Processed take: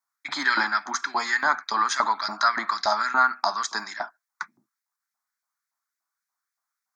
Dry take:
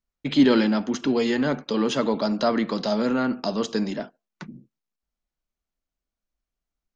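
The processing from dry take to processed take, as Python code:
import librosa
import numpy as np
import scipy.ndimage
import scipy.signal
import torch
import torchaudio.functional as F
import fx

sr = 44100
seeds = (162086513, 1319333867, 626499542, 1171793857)

y = fx.vibrato(x, sr, rate_hz=0.82, depth_cents=10.0)
y = fx.filter_lfo_highpass(y, sr, shape='saw_up', hz=3.5, low_hz=760.0, high_hz=2200.0, q=1.8)
y = fx.fixed_phaser(y, sr, hz=1200.0, stages=4)
y = F.gain(torch.from_numpy(y), 8.5).numpy()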